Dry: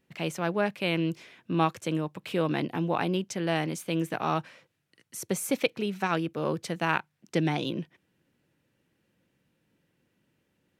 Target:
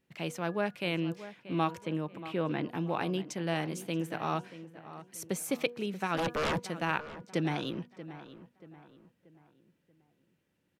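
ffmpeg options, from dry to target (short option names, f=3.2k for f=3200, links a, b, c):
-filter_complex "[0:a]bandreject=f=241:t=h:w=4,bandreject=f=482:t=h:w=4,bandreject=f=723:t=h:w=4,bandreject=f=964:t=h:w=4,bandreject=f=1.205k:t=h:w=4,bandreject=f=1.446k:t=h:w=4,bandreject=f=1.687k:t=h:w=4,asplit=3[a][b][c];[a]afade=t=out:st=6.17:d=0.02[d];[b]aeval=exprs='0.075*sin(PI/2*3.16*val(0)/0.075)':c=same,afade=t=in:st=6.17:d=0.02,afade=t=out:st=6.58:d=0.02[e];[c]afade=t=in:st=6.58:d=0.02[f];[d][e][f]amix=inputs=3:normalize=0,asplit=2[g][h];[h]adelay=633,lowpass=f=2.5k:p=1,volume=-14dB,asplit=2[i][j];[j]adelay=633,lowpass=f=2.5k:p=1,volume=0.41,asplit=2[k][l];[l]adelay=633,lowpass=f=2.5k:p=1,volume=0.41,asplit=2[m][n];[n]adelay=633,lowpass=f=2.5k:p=1,volume=0.41[o];[g][i][k][m][o]amix=inputs=5:normalize=0,asettb=1/sr,asplit=3[p][q][r];[p]atrim=end=1.784[s];[q]atrim=start=1.78:end=2.66,asetpts=PTS-STARTPTS,afade=t=in:d=0.004:c=qsin,afade=t=out:st=0.876:d=0.004:c=qsin,acrossover=split=3500[t][u];[u]acompressor=threshold=-58dB:ratio=4:attack=1:release=60[v];[t][v]amix=inputs=2:normalize=0[w];[r]atrim=start=2.656[x];[s][w]acrossfade=d=0.004:c1=hsin:c2=qsin[y];[y][x]acrossfade=d=0.004:c1=qsin:c2=hsin,volume=-4.5dB"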